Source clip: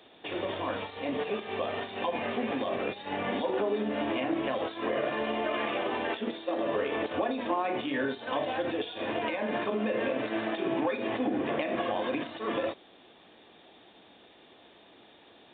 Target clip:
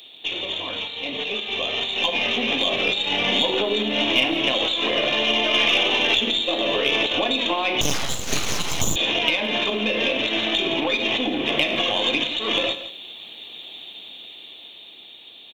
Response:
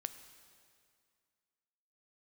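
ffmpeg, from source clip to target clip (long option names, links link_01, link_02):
-filter_complex "[0:a]aexciter=amount=10:drive=5.6:freq=2500,dynaudnorm=framelen=360:gausssize=11:maxgain=11.5dB,aeval=exprs='0.891*(cos(1*acos(clip(val(0)/0.891,-1,1)))-cos(1*PI/2))+0.0316*(cos(6*acos(clip(val(0)/0.891,-1,1)))-cos(6*PI/2))':channel_layout=same,aecho=1:1:168:0.188[link_01];[1:a]atrim=start_sample=2205,afade=type=out:start_time=0.17:duration=0.01,atrim=end_sample=7938[link_02];[link_01][link_02]afir=irnorm=-1:irlink=0,asettb=1/sr,asplit=3[link_03][link_04][link_05];[link_03]atrim=end=7.814[link_06];[link_04]atrim=start=7.81:end=8.96,asetpts=PTS-STARTPTS,afade=type=in:duration=0.004:curve=qsin,afade=type=out:start_time=1.146:duration=0.004:curve=qsin,aeval=exprs='abs(val(0))':channel_layout=same[link_07];[link_05]atrim=start=8.956[link_08];[link_06][link_07]acrossfade=duration=0.004:curve1=hsin:curve2=qsin[link_09];[link_09][link_08]acrossfade=duration=0.004:curve1=qsin:curve2=hsin"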